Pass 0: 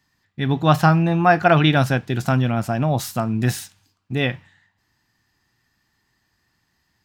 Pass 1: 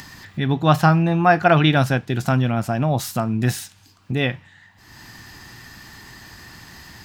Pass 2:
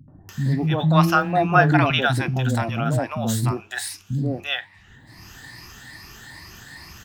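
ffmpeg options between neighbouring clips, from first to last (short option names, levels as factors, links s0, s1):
-af "acompressor=mode=upward:threshold=0.1:ratio=2.5"
-filter_complex "[0:a]afftfilt=real='re*pow(10,11/40*sin(2*PI*(0.89*log(max(b,1)*sr/1024/100)/log(2)-(2.4)*(pts-256)/sr)))':imag='im*pow(10,11/40*sin(2*PI*(0.89*log(max(b,1)*sr/1024/100)/log(2)-(2.4)*(pts-256)/sr)))':win_size=1024:overlap=0.75,acrossover=split=230|690[s0][s1][s2];[s1]adelay=80[s3];[s2]adelay=290[s4];[s0][s3][s4]amix=inputs=3:normalize=0,volume=0.891"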